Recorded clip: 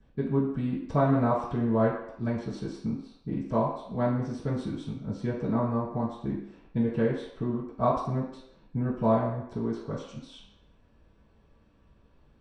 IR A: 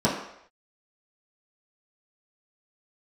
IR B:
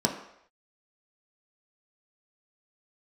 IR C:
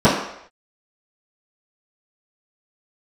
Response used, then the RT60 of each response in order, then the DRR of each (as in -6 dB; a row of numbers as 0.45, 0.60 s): C; not exponential, not exponential, not exponential; -8.5, 0.5, -16.5 dB